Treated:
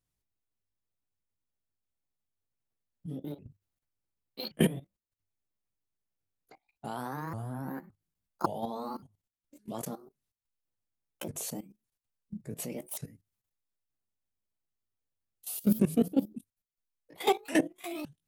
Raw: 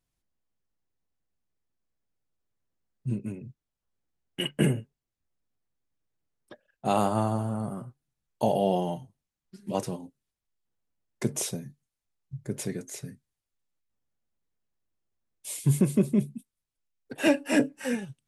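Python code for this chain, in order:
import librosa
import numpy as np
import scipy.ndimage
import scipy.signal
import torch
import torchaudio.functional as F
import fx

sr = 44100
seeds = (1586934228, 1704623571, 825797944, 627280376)

p1 = fx.pitch_ramps(x, sr, semitones=7.5, every_ms=564)
p2 = fx.peak_eq(p1, sr, hz=100.0, db=10.0, octaves=0.24)
p3 = fx.rider(p2, sr, range_db=3, speed_s=2.0)
p4 = p2 + F.gain(torch.from_numpy(p3), 1.5).numpy()
p5 = fx.high_shelf(p4, sr, hz=8900.0, db=4.5)
p6 = fx.level_steps(p5, sr, step_db=16)
y = F.gain(torch.from_numpy(p6), -5.5).numpy()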